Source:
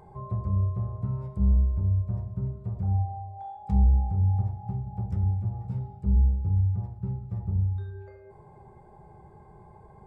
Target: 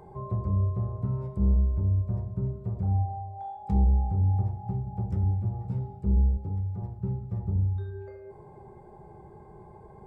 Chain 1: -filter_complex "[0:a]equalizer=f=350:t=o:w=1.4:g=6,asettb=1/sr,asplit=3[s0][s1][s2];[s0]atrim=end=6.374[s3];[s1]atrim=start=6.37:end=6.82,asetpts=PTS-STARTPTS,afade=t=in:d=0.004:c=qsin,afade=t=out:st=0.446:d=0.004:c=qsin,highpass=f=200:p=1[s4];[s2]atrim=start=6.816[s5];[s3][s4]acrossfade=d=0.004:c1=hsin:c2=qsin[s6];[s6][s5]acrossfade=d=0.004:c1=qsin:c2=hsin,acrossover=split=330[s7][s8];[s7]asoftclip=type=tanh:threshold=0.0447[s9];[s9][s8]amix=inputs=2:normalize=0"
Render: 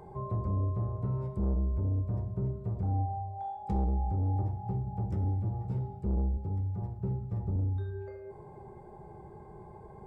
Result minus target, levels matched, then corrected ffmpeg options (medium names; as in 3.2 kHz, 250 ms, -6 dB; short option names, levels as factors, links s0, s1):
saturation: distortion +12 dB
-filter_complex "[0:a]equalizer=f=350:t=o:w=1.4:g=6,asettb=1/sr,asplit=3[s0][s1][s2];[s0]atrim=end=6.374[s3];[s1]atrim=start=6.37:end=6.82,asetpts=PTS-STARTPTS,afade=t=in:d=0.004:c=qsin,afade=t=out:st=0.446:d=0.004:c=qsin,highpass=f=200:p=1[s4];[s2]atrim=start=6.816[s5];[s3][s4]acrossfade=d=0.004:c1=hsin:c2=qsin[s6];[s6][s5]acrossfade=d=0.004:c1=qsin:c2=hsin,acrossover=split=330[s7][s8];[s7]asoftclip=type=tanh:threshold=0.168[s9];[s9][s8]amix=inputs=2:normalize=0"